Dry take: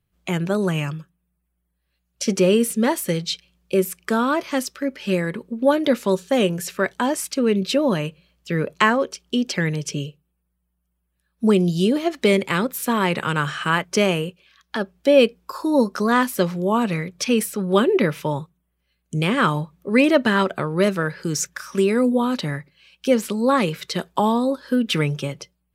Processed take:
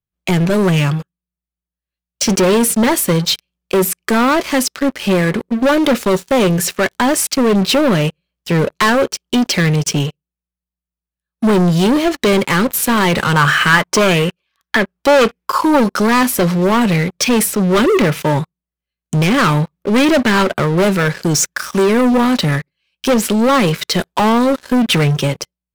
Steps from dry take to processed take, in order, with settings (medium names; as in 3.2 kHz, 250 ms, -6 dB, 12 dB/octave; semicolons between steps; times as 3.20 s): waveshaping leveller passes 5; 13.33–15.78 s: sweeping bell 1.7 Hz 900–2100 Hz +8 dB; trim -5.5 dB